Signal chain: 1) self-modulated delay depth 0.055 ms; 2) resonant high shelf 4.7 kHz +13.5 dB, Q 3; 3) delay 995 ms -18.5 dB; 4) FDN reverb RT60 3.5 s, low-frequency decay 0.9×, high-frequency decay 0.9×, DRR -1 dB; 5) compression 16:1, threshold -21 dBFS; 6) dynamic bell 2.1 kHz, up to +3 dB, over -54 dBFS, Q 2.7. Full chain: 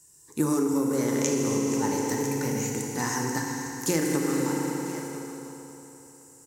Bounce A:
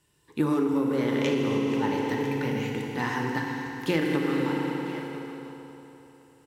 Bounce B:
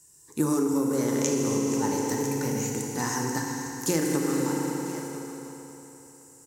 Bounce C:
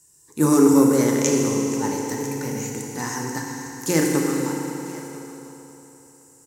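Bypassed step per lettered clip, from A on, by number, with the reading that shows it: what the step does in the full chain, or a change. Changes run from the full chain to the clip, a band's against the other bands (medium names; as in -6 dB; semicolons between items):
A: 2, 8 kHz band -19.0 dB; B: 6, 2 kHz band -1.5 dB; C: 5, mean gain reduction 2.5 dB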